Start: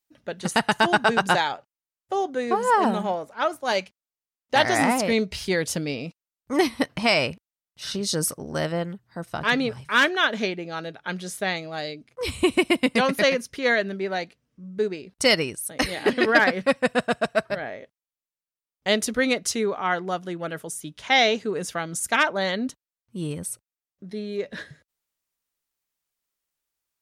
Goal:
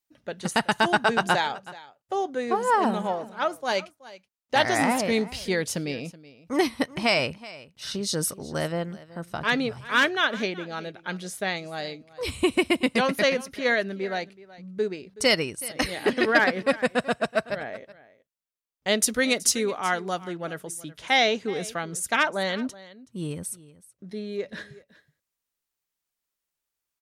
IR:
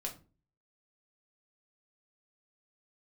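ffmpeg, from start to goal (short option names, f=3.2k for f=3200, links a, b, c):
-filter_complex "[0:a]asettb=1/sr,asplit=3[a][b][c];[a]atrim=end=19.024[d];[b]atrim=start=19.02:end=20.21,asetpts=PTS-STARTPTS,afade=t=in:d=0.004:c=qsin,afade=t=out:st=1.186:d=0.004:c=qsin,highshelf=f=4.5k:g=10.5[e];[c]atrim=start=20.206[f];[d][e]acrossfade=d=0.004:c1=hsin:c2=qsin[g];[g][f]acrossfade=d=0.004:c1=qsin:c2=hsin,asplit=2[h][i];[i]aecho=0:1:375:0.112[j];[h][j]amix=inputs=2:normalize=0,volume=-2dB"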